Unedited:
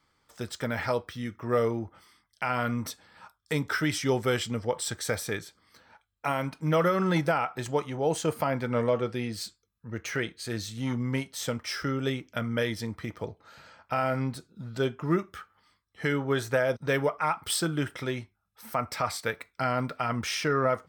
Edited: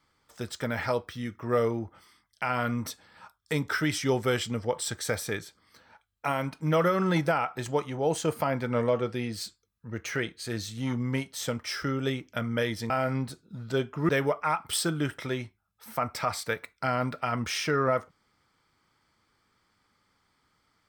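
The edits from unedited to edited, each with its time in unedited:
12.90–13.96 s: delete
15.15–16.86 s: delete

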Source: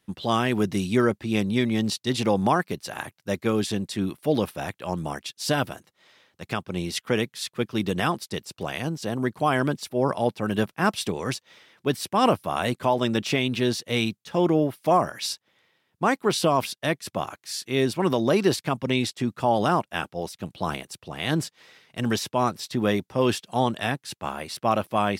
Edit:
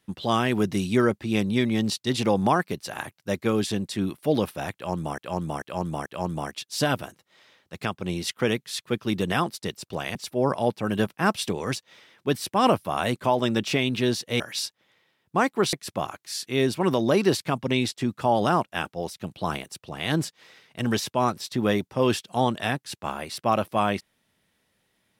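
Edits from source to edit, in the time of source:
4.74–5.18 s: loop, 4 plays
8.83–9.74 s: delete
13.99–15.07 s: delete
16.40–16.92 s: delete

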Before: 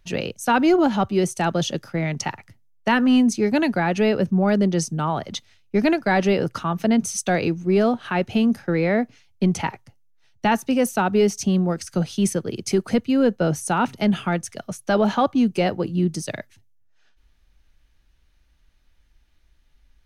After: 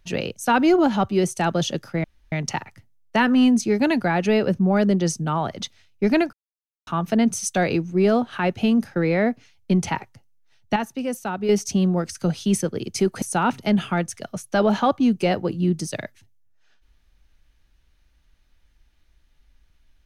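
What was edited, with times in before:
2.04 s: insert room tone 0.28 s
6.05–6.59 s: mute
10.48–11.21 s: gain -7 dB
12.94–13.57 s: delete

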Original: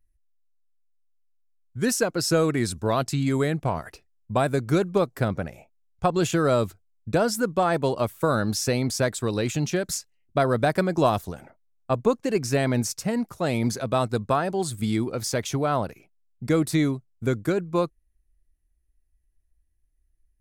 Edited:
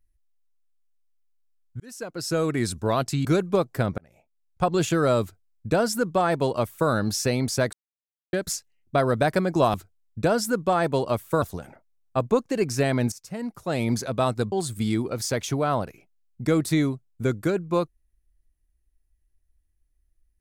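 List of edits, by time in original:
1.80–2.66 s: fade in
3.25–4.67 s: delete
5.40–6.10 s: fade in
6.64–8.32 s: copy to 11.16 s
9.15–9.75 s: mute
12.86–13.60 s: fade in, from -16 dB
14.26–14.54 s: delete

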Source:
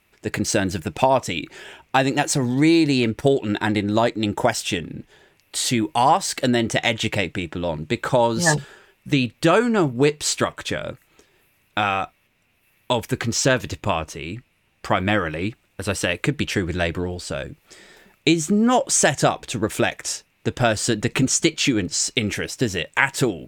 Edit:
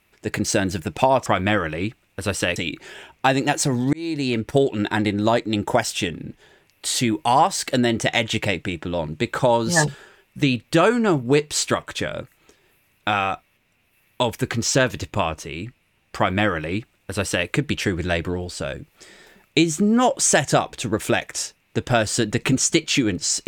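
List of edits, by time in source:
2.63–3.38 s: fade in equal-power
14.87–16.17 s: copy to 1.26 s

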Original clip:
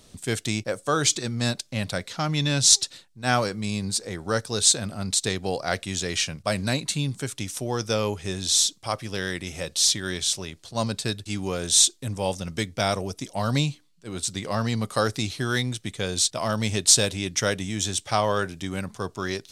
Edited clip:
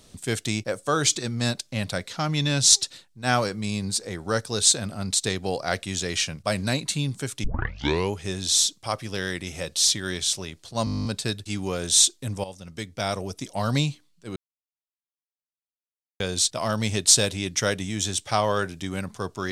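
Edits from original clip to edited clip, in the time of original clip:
7.44 s: tape start 0.67 s
10.85 s: stutter 0.02 s, 11 plays
12.24–13.27 s: fade in, from -14.5 dB
14.16–16.00 s: mute

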